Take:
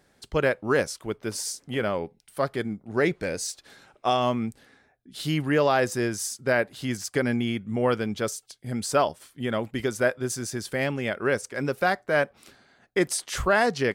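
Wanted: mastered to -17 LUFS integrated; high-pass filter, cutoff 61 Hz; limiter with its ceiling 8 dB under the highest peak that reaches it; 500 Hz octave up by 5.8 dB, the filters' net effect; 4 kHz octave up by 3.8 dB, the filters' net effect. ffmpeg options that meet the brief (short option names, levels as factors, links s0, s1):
-af "highpass=61,equalizer=f=500:t=o:g=7,equalizer=f=4000:t=o:g=5,volume=2.82,alimiter=limit=0.562:level=0:latency=1"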